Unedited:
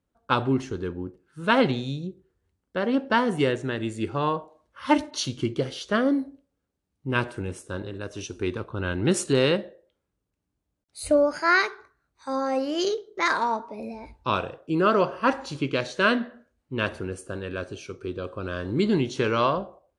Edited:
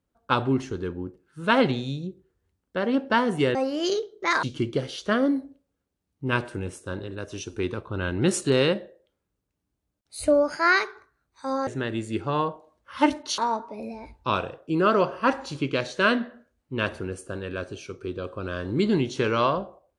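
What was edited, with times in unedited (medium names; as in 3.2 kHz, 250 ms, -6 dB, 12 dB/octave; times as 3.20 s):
3.55–5.26 s: swap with 12.50–13.38 s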